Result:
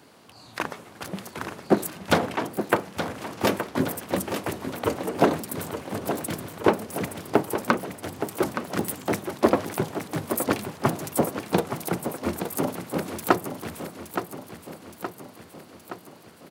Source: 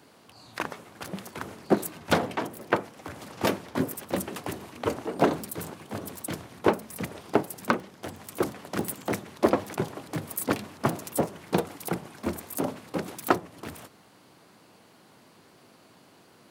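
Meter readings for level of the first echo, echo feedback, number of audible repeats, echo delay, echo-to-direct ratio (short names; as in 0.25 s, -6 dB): -9.0 dB, 59%, 6, 0.87 s, -7.0 dB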